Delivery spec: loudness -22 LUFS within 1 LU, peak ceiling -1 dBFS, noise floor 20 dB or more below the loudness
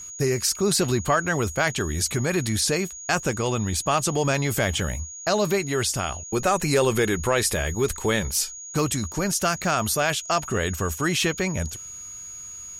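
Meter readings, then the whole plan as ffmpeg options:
steady tone 6700 Hz; tone level -36 dBFS; loudness -24.0 LUFS; peak -9.0 dBFS; loudness target -22.0 LUFS
-> -af "bandreject=f=6.7k:w=30"
-af "volume=2dB"

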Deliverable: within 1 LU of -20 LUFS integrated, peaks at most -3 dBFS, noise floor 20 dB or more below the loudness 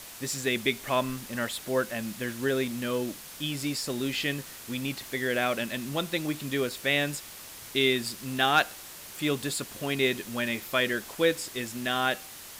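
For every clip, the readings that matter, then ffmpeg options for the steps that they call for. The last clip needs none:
noise floor -45 dBFS; noise floor target -49 dBFS; loudness -29.0 LUFS; peak -10.0 dBFS; loudness target -20.0 LUFS
-> -af "afftdn=nr=6:nf=-45"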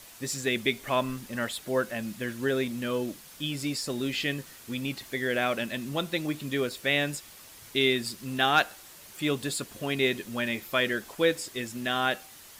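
noise floor -50 dBFS; loudness -29.5 LUFS; peak -10.0 dBFS; loudness target -20.0 LUFS
-> -af "volume=9.5dB,alimiter=limit=-3dB:level=0:latency=1"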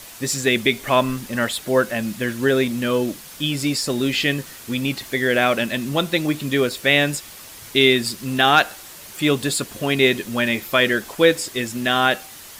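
loudness -20.0 LUFS; peak -3.0 dBFS; noise floor -40 dBFS

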